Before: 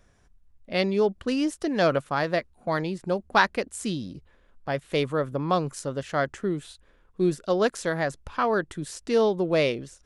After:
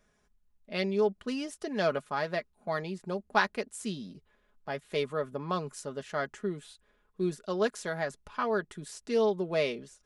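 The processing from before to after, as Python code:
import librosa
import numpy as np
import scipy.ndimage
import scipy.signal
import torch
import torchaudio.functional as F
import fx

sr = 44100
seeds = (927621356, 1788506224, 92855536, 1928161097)

y = fx.low_shelf(x, sr, hz=110.0, db=-9.0)
y = y + 0.56 * np.pad(y, (int(4.8 * sr / 1000.0), 0))[:len(y)]
y = F.gain(torch.from_numpy(y), -7.0).numpy()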